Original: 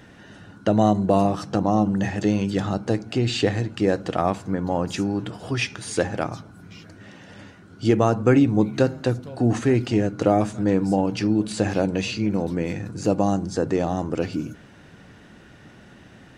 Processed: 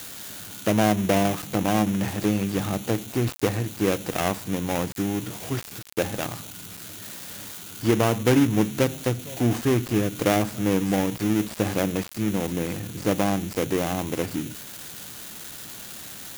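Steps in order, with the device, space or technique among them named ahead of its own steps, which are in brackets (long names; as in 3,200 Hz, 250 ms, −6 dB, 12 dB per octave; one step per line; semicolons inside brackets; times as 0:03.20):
budget class-D amplifier (gap after every zero crossing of 0.29 ms; spike at every zero crossing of −17.5 dBFS)
level −2 dB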